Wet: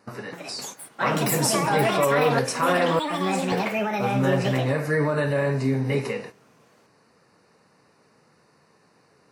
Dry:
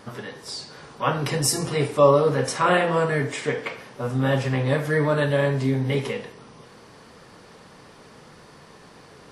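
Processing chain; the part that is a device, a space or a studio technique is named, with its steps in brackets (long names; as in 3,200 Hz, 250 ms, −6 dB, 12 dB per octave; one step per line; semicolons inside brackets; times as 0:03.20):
noise gate −38 dBFS, range −12 dB
PA system with an anti-feedback notch (high-pass filter 100 Hz; Butterworth band-reject 3,300 Hz, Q 3.8; brickwall limiter −13 dBFS, peak gain reduction 9 dB)
0:02.99–0:03.52: first difference
delay with pitch and tempo change per echo 275 ms, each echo +6 semitones, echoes 2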